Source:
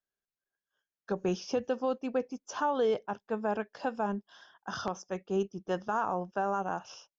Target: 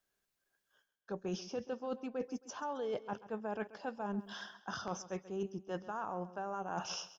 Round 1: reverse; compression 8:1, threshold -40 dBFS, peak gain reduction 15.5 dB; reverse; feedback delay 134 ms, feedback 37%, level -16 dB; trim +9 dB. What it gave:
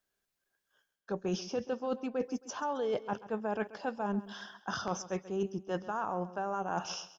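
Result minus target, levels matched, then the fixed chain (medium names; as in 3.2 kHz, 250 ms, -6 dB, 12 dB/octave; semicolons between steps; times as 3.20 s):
compression: peak gain reduction -5 dB
reverse; compression 8:1, threshold -46 dBFS, peak gain reduction 20.5 dB; reverse; feedback delay 134 ms, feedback 37%, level -16 dB; trim +9 dB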